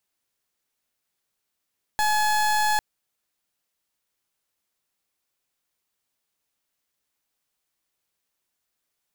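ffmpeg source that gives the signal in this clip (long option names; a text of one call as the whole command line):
ffmpeg -f lavfi -i "aevalsrc='0.0841*(2*lt(mod(850*t,1),0.3)-1)':duration=0.8:sample_rate=44100" out.wav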